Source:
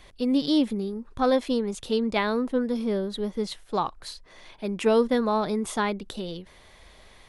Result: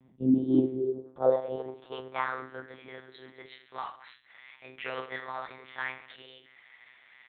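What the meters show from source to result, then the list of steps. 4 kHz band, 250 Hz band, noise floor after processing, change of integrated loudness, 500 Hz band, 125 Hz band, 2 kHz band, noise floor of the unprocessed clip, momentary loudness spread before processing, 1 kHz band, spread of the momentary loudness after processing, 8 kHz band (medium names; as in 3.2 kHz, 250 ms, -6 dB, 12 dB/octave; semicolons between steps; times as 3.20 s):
-14.0 dB, -5.5 dB, -60 dBFS, -5.0 dB, -6.5 dB, -3.5 dB, -3.0 dB, -53 dBFS, 13 LU, -7.5 dB, 23 LU, under -35 dB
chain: reverse bouncing-ball echo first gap 20 ms, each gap 1.4×, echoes 5; monotone LPC vocoder at 8 kHz 130 Hz; band-pass sweep 220 Hz -> 2 kHz, 0.17–2.73 s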